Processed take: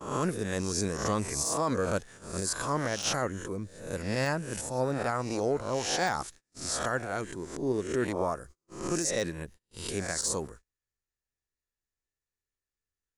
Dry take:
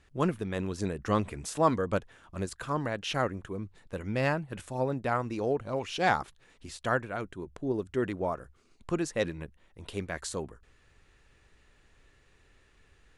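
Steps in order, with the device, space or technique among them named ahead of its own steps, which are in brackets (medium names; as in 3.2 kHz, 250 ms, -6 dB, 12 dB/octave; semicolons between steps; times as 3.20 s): reverse spectral sustain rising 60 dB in 0.59 s; gate -48 dBFS, range -35 dB; de-esser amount 70%; peaking EQ 1.8 kHz +2.5 dB 0.6 oct; over-bright horn tweeter (resonant high shelf 4.2 kHz +10 dB, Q 1.5; peak limiter -18.5 dBFS, peak gain reduction 8 dB)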